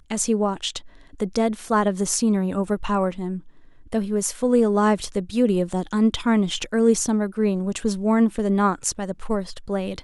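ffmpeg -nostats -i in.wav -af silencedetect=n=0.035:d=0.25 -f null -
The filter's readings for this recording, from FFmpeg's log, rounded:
silence_start: 0.78
silence_end: 1.20 | silence_duration: 0.42
silence_start: 3.38
silence_end: 3.92 | silence_duration: 0.54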